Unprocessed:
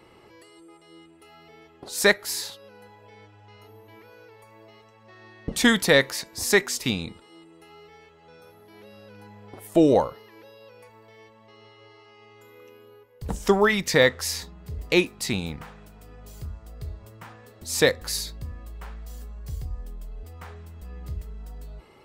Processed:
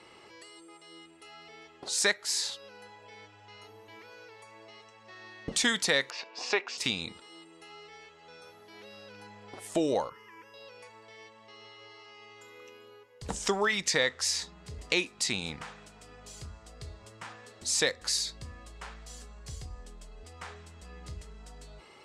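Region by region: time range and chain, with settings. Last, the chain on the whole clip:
0:06.10–0:06.78: loudspeaker in its box 390–4,000 Hz, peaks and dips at 450 Hz +4 dB, 720 Hz +5 dB, 1,000 Hz +4 dB, 1,900 Hz −8 dB, 2,700 Hz +9 dB, 3,900 Hz −8 dB + notch filter 3,100 Hz, Q 15
0:10.09–0:10.54: parametric band 960 Hz +13.5 dB 0.22 octaves + phaser with its sweep stopped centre 1,700 Hz, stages 4
whole clip: low-pass filter 8,300 Hz 24 dB per octave; spectral tilt +2.5 dB per octave; downward compressor 2 to 1, threshold −30 dBFS

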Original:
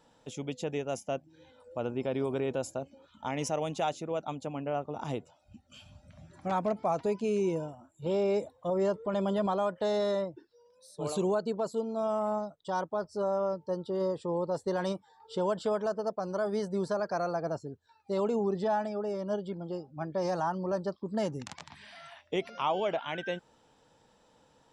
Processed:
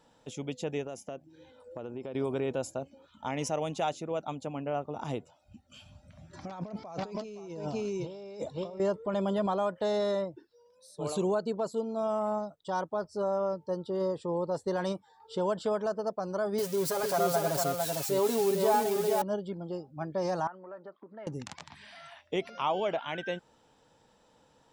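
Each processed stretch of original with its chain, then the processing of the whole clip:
0:00.86–0:02.15: parametric band 380 Hz +4.5 dB 1 octave + downward compressor 5 to 1, threshold −36 dBFS
0:06.33–0:08.80: low-pass with resonance 5,400 Hz, resonance Q 3 + single-tap delay 515 ms −10 dB + compressor whose output falls as the input rises −39 dBFS
0:16.58–0:19.22: spike at every zero crossing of −28 dBFS + comb filter 7.3 ms, depth 71% + single-tap delay 452 ms −3.5 dB
0:20.47–0:21.27: downward compressor 10 to 1, threshold −41 dBFS + loudspeaker in its box 320–2,700 Hz, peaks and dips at 640 Hz +3 dB, 1,400 Hz +7 dB, 2,000 Hz +7 dB
whole clip: no processing

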